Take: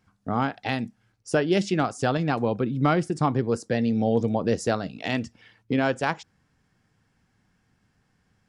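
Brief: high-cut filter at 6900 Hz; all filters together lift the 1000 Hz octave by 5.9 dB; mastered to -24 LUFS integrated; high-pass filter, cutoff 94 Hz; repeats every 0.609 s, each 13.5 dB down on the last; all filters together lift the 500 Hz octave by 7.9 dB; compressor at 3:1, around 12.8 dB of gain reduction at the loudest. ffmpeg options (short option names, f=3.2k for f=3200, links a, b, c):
-af "highpass=94,lowpass=6.9k,equalizer=f=500:t=o:g=8.5,equalizer=f=1k:t=o:g=4.5,acompressor=threshold=-30dB:ratio=3,aecho=1:1:609|1218:0.211|0.0444,volume=7.5dB"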